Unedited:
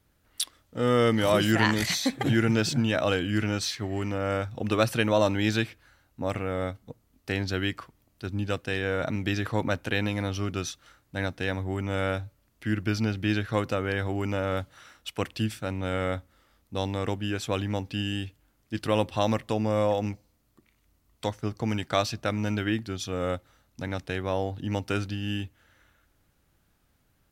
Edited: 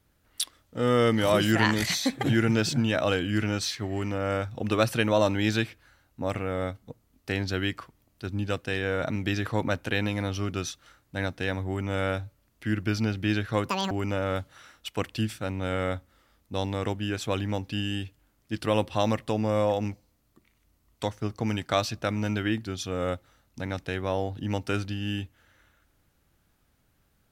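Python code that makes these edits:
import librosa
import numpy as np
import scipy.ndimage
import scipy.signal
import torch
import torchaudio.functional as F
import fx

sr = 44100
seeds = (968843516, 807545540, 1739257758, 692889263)

y = fx.edit(x, sr, fx.speed_span(start_s=13.69, length_s=0.43, speed=1.97), tone=tone)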